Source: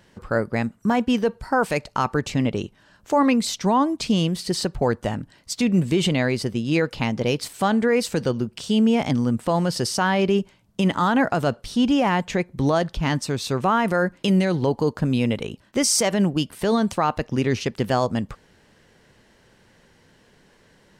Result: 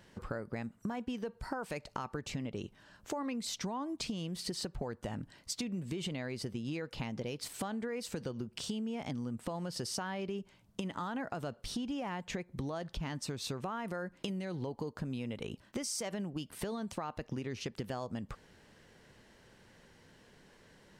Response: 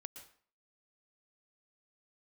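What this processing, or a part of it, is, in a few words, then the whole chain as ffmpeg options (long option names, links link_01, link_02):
serial compression, peaks first: -af "acompressor=threshold=-26dB:ratio=6,acompressor=threshold=-32dB:ratio=2.5,volume=-4.5dB"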